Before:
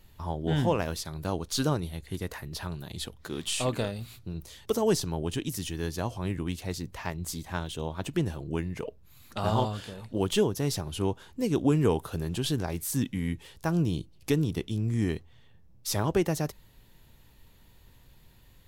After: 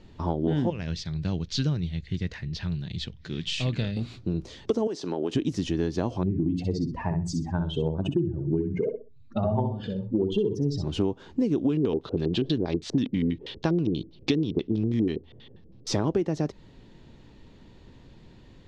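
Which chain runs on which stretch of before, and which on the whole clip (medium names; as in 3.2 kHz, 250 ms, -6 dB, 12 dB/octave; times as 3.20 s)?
0.70–3.97 s: low-pass 5.8 kHz + high-order bell 560 Hz -15 dB 2.8 oct
4.87–5.35 s: high-pass 330 Hz + compression 2.5:1, threshold -35 dBFS
6.23–10.84 s: spectral contrast enhancement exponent 2.1 + hum notches 60/120/180/240/300/360/420 Hz + feedback delay 63 ms, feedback 24%, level -7.5 dB
11.69–15.87 s: treble shelf 3.4 kHz +10.5 dB + LFO low-pass square 6.2 Hz 440–3700 Hz
whole clip: low-pass 6.1 kHz 24 dB/octave; peaking EQ 290 Hz +12 dB 2.1 oct; compression 10:1, threshold -24 dBFS; trim +2.5 dB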